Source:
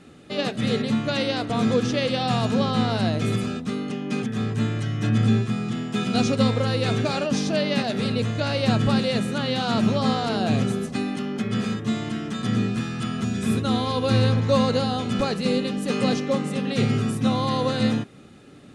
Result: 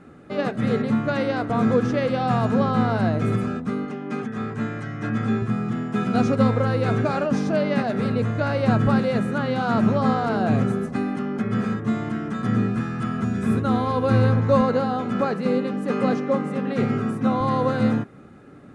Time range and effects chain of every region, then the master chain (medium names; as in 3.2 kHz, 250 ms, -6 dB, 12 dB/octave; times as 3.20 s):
3.85–5.42 s: low-pass 9.2 kHz + bass shelf 290 Hz -8 dB + doubling 13 ms -11 dB
14.61–17.41 s: high-pass 160 Hz + treble shelf 7 kHz -6 dB
whole clip: resonant high shelf 2.3 kHz -10.5 dB, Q 1.5; band-stop 1.8 kHz, Q 20; trim +1.5 dB